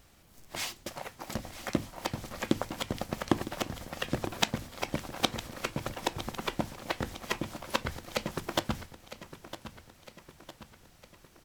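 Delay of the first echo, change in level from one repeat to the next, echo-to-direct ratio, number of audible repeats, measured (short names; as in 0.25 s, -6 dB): 0.957 s, -5.5 dB, -12.0 dB, 4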